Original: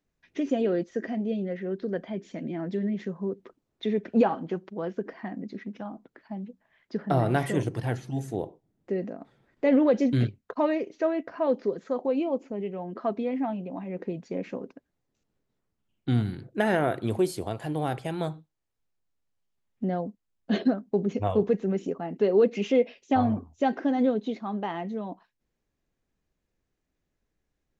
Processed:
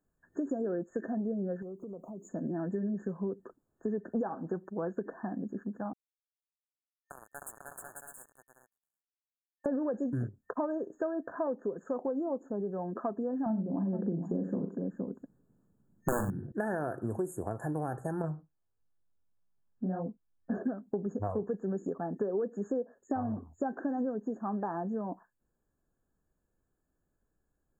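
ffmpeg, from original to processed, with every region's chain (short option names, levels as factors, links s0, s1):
-filter_complex "[0:a]asettb=1/sr,asplit=3[s0][s1][s2];[s0]atrim=end=1.624[s3];[s1]atrim=start=1.62:end=2.29,asetpts=PTS-STARTPTS,afade=t=in:d=0.004:c=qsin,afade=t=out:st=0.666:d=0.004:c=qsin,aemphasis=mode=production:type=50kf,acompressor=threshold=0.01:ratio=6:attack=3.2:release=140:knee=1:detection=peak,asuperstop=centerf=2000:order=12:qfactor=1[s4];[s2]atrim=start=2.286[s5];[s3][s4]acrossfade=d=0.004:c1=hsin:c2=qsin[s6];[s6][s5]acrossfade=d=0.004:c1=qsin:c2=hsin,asettb=1/sr,asplit=3[s7][s8][s9];[s7]atrim=end=5.934[s10];[s8]atrim=start=5.93:end=9.66,asetpts=PTS-STARTPTS,afade=t=in:d=0.004:c=qsin,afade=t=out:st=3.726:d=0.004:c=qsin,aderivative,acrusher=bits=5:mix=0:aa=0.5,aecho=1:1:310|496|607.6|674.6|714.7|738.8:0.794|0.631|0.501|0.398|0.316|0.251,atrim=end_sample=164493[s11];[s9]atrim=start=9.656[s12];[s10][s11]acrossfade=d=0.004:c1=hsin:c2=qsin[s13];[s13][s12]acrossfade=d=0.004:c1=qsin:c2=hsin,asettb=1/sr,asplit=3[s14][s15][s16];[s14]atrim=end=13.464[s17];[s15]atrim=start=13.46:end=16.52,asetpts=PTS-STARTPTS,afade=t=in:d=0.004:c=qsin,afade=t=out:st=3.056:d=0.004:c=qsin,equalizer=f=180:t=o:w=2.5:g=14.5,aeval=exprs='(mod(2.24*val(0)+1,2)-1)/2.24':c=same,aecho=1:1:41|95|468:0.398|0.178|0.299,atrim=end_sample=134946[s18];[s16]atrim=start=16.516[s19];[s17][s18]acrossfade=d=0.004:c1=hsin:c2=qsin[s20];[s20][s19]acrossfade=d=0.004:c1=qsin:c2=hsin,asettb=1/sr,asplit=3[s21][s22][s23];[s21]atrim=end=18.224[s24];[s22]atrim=start=18.22:end=20.58,asetpts=PTS-STARTPTS,afade=t=in:d=0.004:c=qsin,afade=t=out:st=2.356:d=0.004:c=qsin,bass=f=250:g=3,treble=f=4000:g=-11,flanger=delay=18:depth=5.7:speed=1.6,asplit=2[s25][s26];[s26]adelay=12,volume=0.2[s27];[s25][s27]amix=inputs=2:normalize=0,atrim=end_sample=104076[s28];[s23]atrim=start=20.576[s29];[s24][s28]acrossfade=d=0.004:c1=hsin:c2=qsin[s30];[s30][s29]acrossfade=d=0.004:c1=qsin:c2=hsin,afftfilt=real='re*(1-between(b*sr/4096,1800,6500))':imag='im*(1-between(b*sr/4096,1800,6500))':win_size=4096:overlap=0.75,acompressor=threshold=0.0316:ratio=6"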